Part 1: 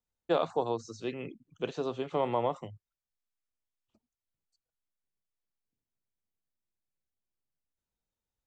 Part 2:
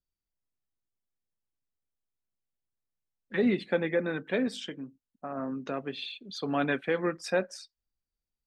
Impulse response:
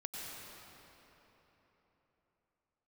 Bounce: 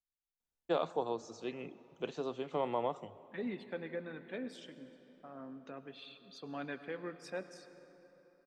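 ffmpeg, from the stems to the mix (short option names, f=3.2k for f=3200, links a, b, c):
-filter_complex "[0:a]equalizer=f=110:w=3.9:g=-9.5,adelay=400,volume=-5.5dB,asplit=2[a][b];[b]volume=-17dB[c];[1:a]volume=-15.5dB,asplit=2[d][e];[e]volume=-8.5dB[f];[2:a]atrim=start_sample=2205[g];[c][f]amix=inputs=2:normalize=0[h];[h][g]afir=irnorm=-1:irlink=0[i];[a][d][i]amix=inputs=3:normalize=0"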